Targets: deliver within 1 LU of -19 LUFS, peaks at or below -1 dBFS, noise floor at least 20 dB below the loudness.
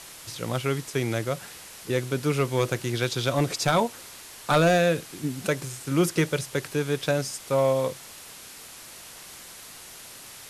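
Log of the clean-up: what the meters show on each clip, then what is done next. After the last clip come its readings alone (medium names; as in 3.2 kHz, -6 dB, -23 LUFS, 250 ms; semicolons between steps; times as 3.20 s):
clipped samples 0.2%; clipping level -13.5 dBFS; noise floor -45 dBFS; noise floor target -46 dBFS; loudness -26.0 LUFS; peak level -13.5 dBFS; loudness target -19.0 LUFS
-> clip repair -13.5 dBFS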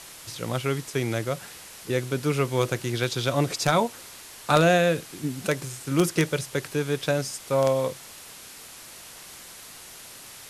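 clipped samples 0.0%; noise floor -45 dBFS; noise floor target -46 dBFS
-> noise print and reduce 6 dB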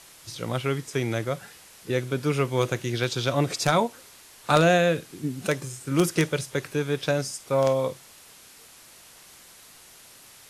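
noise floor -51 dBFS; loudness -25.5 LUFS; peak level -4.5 dBFS; loudness target -19.0 LUFS
-> trim +6.5 dB; peak limiter -1 dBFS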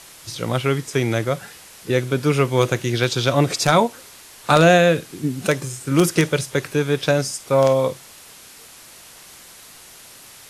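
loudness -19.5 LUFS; peak level -1.0 dBFS; noise floor -44 dBFS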